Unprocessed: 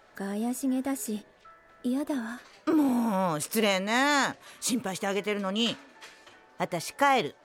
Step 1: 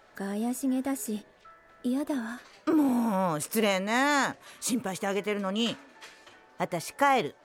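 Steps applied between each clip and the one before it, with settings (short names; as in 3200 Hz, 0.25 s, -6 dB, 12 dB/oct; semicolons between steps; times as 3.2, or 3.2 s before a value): dynamic EQ 4000 Hz, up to -4 dB, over -44 dBFS, Q 1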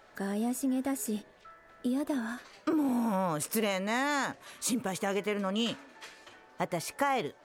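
compressor 3:1, threshold -27 dBFS, peak gain reduction 6.5 dB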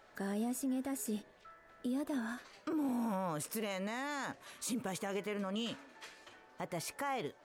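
limiter -25.5 dBFS, peak gain reduction 9 dB; gain -4 dB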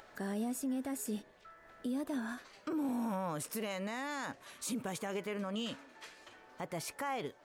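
upward compressor, threshold -52 dBFS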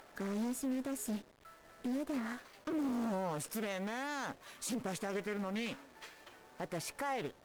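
level-crossing sampler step -56.5 dBFS; added harmonics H 8 -26 dB, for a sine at -29 dBFS; Doppler distortion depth 0.39 ms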